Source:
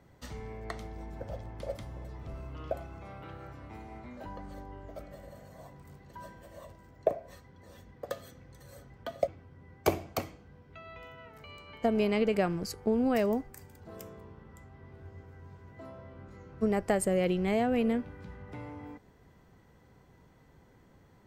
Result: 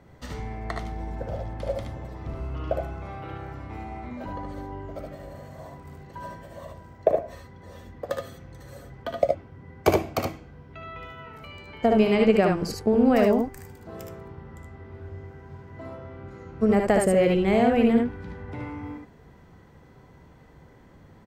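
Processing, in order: treble shelf 5.2 kHz -7 dB; on a send: early reflections 61 ms -9 dB, 74 ms -4 dB; on the sum: trim +6.5 dB

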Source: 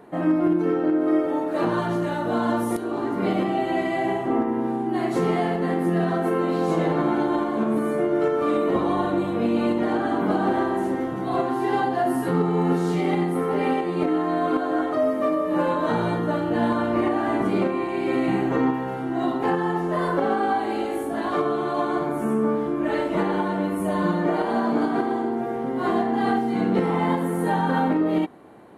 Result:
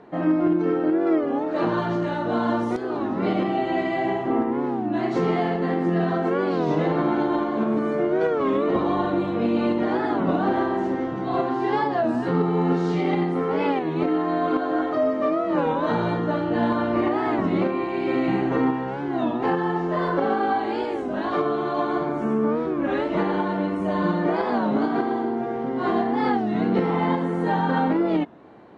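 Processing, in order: low-pass 5.8 kHz 24 dB/octave; warped record 33 1/3 rpm, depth 160 cents

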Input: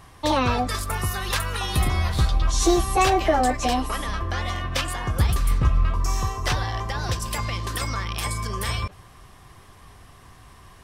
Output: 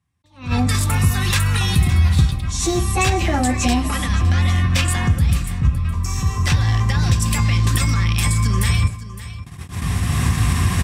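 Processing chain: recorder AGC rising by 15 dB/s; tone controls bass +12 dB, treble +7 dB; gate -25 dBFS, range -37 dB; compression 4:1, threshold -14 dBFS, peak gain reduction 11 dB; high-pass 64 Hz 24 dB/octave; treble shelf 5.5 kHz -10.5 dB; delay 562 ms -15 dB; reverberation RT60 0.45 s, pre-delay 3 ms, DRR 11.5 dB; attacks held to a fixed rise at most 180 dB/s; trim +8 dB

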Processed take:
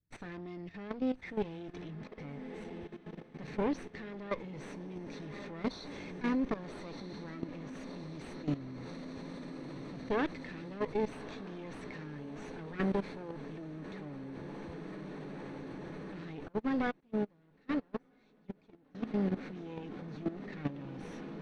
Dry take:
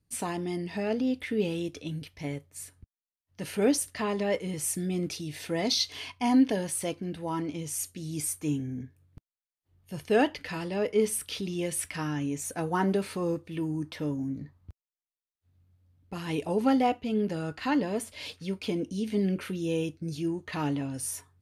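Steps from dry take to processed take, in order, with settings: comb filter that takes the minimum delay 0.5 ms; treble shelf 7.7 kHz -11.5 dB; echo that smears into a reverb 1260 ms, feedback 79%, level -10 dB; level held to a coarse grid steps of 14 dB; distance through air 150 m; 16.48–18.95 s: upward expansion 2.5:1, over -45 dBFS; trim -1.5 dB

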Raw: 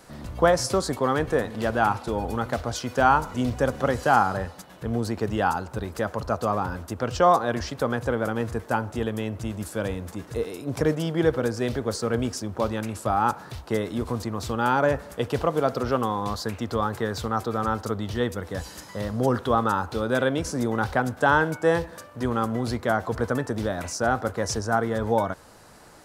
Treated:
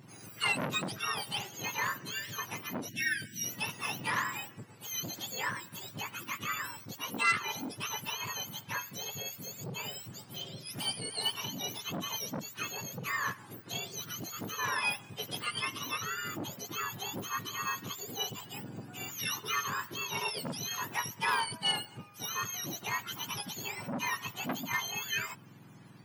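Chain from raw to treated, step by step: spectrum inverted on a logarithmic axis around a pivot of 1.2 kHz; spectral selection erased 2.89–3.44 s, 380–1500 Hz; transformer saturation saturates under 2.2 kHz; trim -6.5 dB

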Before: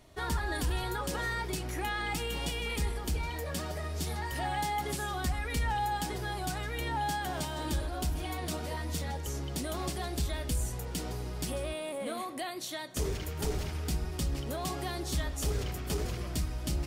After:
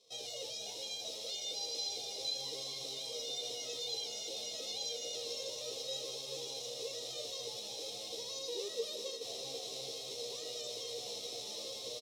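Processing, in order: formants flattened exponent 0.1; de-hum 431.1 Hz, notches 9; level rider gain up to 11 dB; peak limiter -23.5 dBFS, peak gain reduction 18 dB; tempo 0.81×; vowel filter i; distance through air 88 m; doubling 26 ms -5 dB; echo that smears into a reverb 760 ms, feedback 67%, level -9 dB; speed mistake 45 rpm record played at 78 rpm; trim +8 dB

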